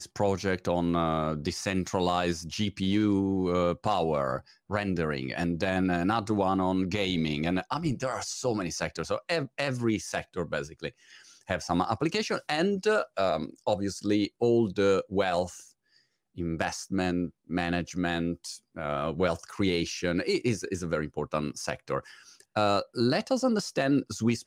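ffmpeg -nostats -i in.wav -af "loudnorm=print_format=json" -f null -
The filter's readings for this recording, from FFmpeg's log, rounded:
"input_i" : "-29.0",
"input_tp" : "-10.5",
"input_lra" : "3.5",
"input_thresh" : "-39.3",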